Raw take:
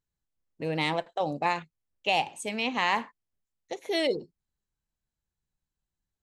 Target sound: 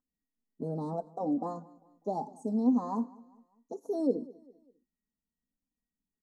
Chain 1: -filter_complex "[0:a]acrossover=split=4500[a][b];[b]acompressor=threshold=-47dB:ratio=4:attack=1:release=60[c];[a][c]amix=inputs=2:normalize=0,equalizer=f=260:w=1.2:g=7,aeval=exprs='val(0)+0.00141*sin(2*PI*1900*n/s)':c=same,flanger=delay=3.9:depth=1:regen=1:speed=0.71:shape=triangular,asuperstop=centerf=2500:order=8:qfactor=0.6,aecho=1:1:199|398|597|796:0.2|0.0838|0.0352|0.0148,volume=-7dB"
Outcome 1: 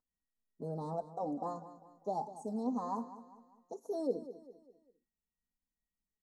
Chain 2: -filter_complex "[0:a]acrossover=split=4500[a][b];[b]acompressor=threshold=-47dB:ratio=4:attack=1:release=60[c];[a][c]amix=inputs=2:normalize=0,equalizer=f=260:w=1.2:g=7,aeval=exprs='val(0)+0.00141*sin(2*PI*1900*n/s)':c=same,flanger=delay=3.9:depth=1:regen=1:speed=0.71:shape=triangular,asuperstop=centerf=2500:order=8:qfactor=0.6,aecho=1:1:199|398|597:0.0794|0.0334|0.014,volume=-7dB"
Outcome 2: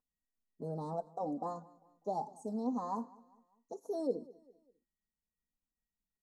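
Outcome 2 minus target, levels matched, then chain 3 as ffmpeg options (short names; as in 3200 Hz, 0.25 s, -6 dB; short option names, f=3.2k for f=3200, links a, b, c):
250 Hz band -3.0 dB
-filter_complex "[0:a]acrossover=split=4500[a][b];[b]acompressor=threshold=-47dB:ratio=4:attack=1:release=60[c];[a][c]amix=inputs=2:normalize=0,equalizer=f=260:w=1.2:g=18,aeval=exprs='val(0)+0.00141*sin(2*PI*1900*n/s)':c=same,flanger=delay=3.9:depth=1:regen=1:speed=0.71:shape=triangular,asuperstop=centerf=2500:order=8:qfactor=0.6,aecho=1:1:199|398|597:0.0794|0.0334|0.014,volume=-7dB"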